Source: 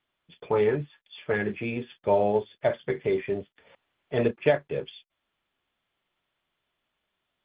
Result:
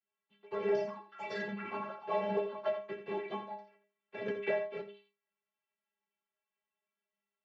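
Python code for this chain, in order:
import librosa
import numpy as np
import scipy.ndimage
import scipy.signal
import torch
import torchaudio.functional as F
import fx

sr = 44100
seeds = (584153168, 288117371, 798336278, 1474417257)

p1 = fx.block_float(x, sr, bits=3)
p2 = fx.resample_bad(p1, sr, factor=8, down='filtered', up='zero_stuff', at=(0.74, 1.41))
p3 = fx.echo_pitch(p2, sr, ms=321, semitones=7, count=3, db_per_echo=-6.0)
p4 = fx.noise_vocoder(p3, sr, seeds[0], bands=16)
p5 = scipy.signal.sosfilt(scipy.signal.butter(4, 2800.0, 'lowpass', fs=sr, output='sos'), p4)
p6 = fx.low_shelf(p5, sr, hz=140.0, db=-9.5)
p7 = fx.stiff_resonator(p6, sr, f0_hz=200.0, decay_s=0.36, stiffness=0.008)
p8 = p7 + fx.echo_single(p7, sr, ms=84, db=-10.5, dry=0)
p9 = fx.band_squash(p8, sr, depth_pct=70, at=(4.28, 4.82))
y = F.gain(torch.from_numpy(p9), 2.5).numpy()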